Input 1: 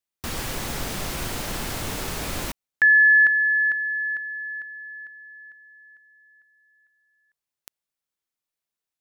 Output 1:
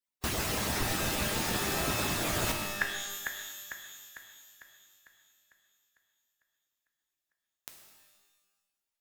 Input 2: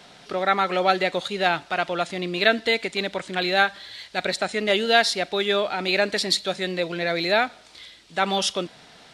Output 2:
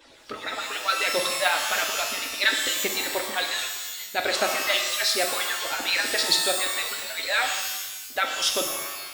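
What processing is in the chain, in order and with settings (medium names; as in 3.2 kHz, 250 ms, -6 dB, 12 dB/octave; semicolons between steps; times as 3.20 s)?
harmonic-percussive separation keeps percussive; pitch-shifted reverb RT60 1.1 s, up +12 st, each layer -2 dB, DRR 3 dB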